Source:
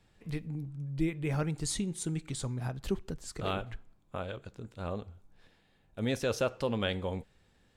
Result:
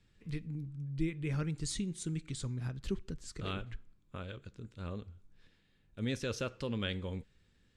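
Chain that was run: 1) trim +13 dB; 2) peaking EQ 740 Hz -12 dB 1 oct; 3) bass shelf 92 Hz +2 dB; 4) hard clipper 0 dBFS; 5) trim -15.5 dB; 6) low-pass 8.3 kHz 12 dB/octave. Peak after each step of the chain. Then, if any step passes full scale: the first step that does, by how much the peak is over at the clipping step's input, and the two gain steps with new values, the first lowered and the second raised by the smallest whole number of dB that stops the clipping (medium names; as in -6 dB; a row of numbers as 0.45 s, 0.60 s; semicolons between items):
-5.0 dBFS, -6.0 dBFS, -5.0 dBFS, -5.0 dBFS, -20.5 dBFS, -20.5 dBFS; nothing clips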